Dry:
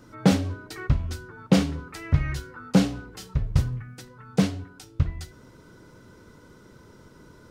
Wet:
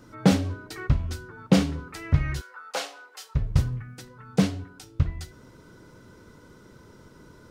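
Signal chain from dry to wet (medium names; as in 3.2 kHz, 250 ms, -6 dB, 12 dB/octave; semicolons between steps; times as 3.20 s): 2.41–3.35 s: high-pass 590 Hz 24 dB/octave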